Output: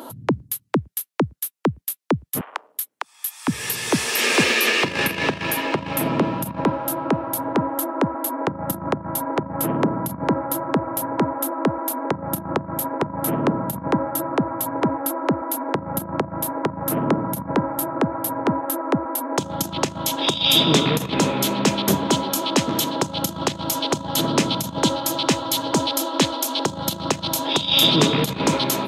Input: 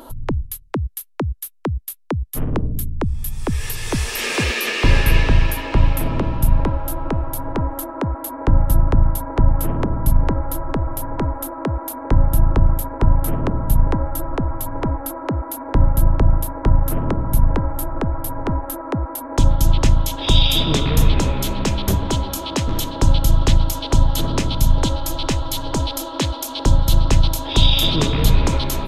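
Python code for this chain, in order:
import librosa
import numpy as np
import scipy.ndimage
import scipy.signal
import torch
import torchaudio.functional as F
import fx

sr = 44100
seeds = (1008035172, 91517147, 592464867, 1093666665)

y = fx.over_compress(x, sr, threshold_db=-14.0, ratio=-0.5)
y = fx.highpass(y, sr, hz=fx.steps((0.0, 140.0), (2.41, 850.0), (3.48, 160.0)), slope=24)
y = y * librosa.db_to_amplitude(2.0)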